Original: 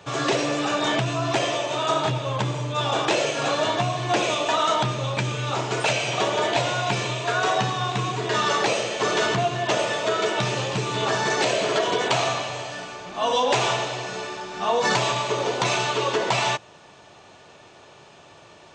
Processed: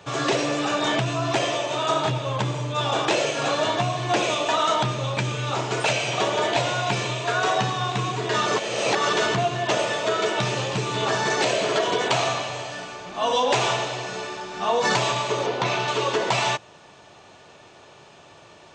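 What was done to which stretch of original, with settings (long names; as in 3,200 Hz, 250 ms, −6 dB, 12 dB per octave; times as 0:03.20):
0:08.46–0:09.13: reverse
0:15.46–0:15.88: high-frequency loss of the air 120 metres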